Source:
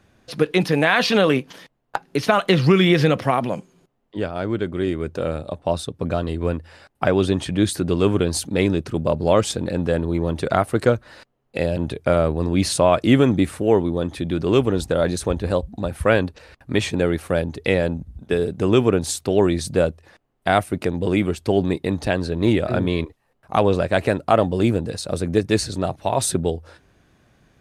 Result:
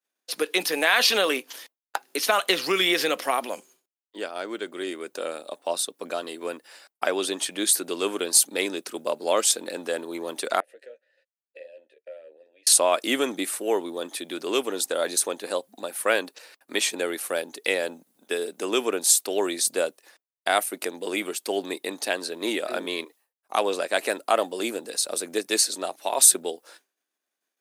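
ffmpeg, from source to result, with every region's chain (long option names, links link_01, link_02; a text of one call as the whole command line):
ffmpeg -i in.wav -filter_complex "[0:a]asettb=1/sr,asplit=3[link_01][link_02][link_03];[link_01]atrim=end=10.604[link_04];[link_02]atrim=start=10.6:end=12.67,asetpts=PTS-STARTPTS,afade=type=in:duration=0.004:curve=qsin,afade=type=out:start_time=2.066:duration=0.004:curve=qsin,acompressor=threshold=-33dB:ratio=2.5:attack=3.2:release=140:knee=1:detection=peak,asplit=3[link_05][link_06][link_07];[link_05]bandpass=frequency=530:width_type=q:width=8,volume=0dB[link_08];[link_06]bandpass=frequency=1840:width_type=q:width=8,volume=-6dB[link_09];[link_07]bandpass=frequency=2480:width_type=q:width=8,volume=-9dB[link_10];[link_08][link_09][link_10]amix=inputs=3:normalize=0,asplit=2[link_11][link_12];[link_12]adelay=13,volume=-6dB[link_13];[link_11][link_13]amix=inputs=2:normalize=0,atrim=end_sample=91287[link_14];[link_03]atrim=start=12.666[link_15];[link_04][link_14]acrossfade=duration=0.004:curve1=hsin:curve2=qsin[link_16];[link_16][link_15]acrossfade=duration=0.004:curve1=qsin:curve2=hsin,agate=range=-33dB:threshold=-43dB:ratio=3:detection=peak,highpass=frequency=260:width=0.5412,highpass=frequency=260:width=1.3066,aemphasis=mode=production:type=riaa,volume=-4dB" out.wav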